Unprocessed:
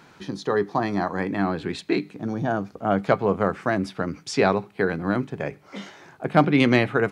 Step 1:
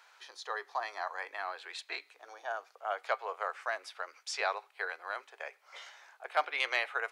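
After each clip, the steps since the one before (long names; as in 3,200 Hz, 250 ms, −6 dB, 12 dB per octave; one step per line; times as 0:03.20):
Bessel high-pass filter 960 Hz, order 8
level −6 dB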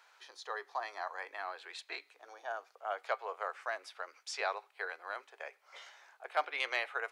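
low-shelf EQ 440 Hz +4.5 dB
level −3.5 dB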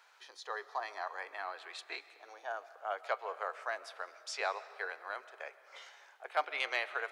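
comb and all-pass reverb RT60 2.2 s, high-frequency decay 0.75×, pre-delay 95 ms, DRR 15.5 dB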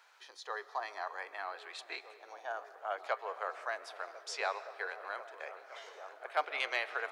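echo whose low-pass opens from repeat to repeat 521 ms, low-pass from 200 Hz, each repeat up 1 octave, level −6 dB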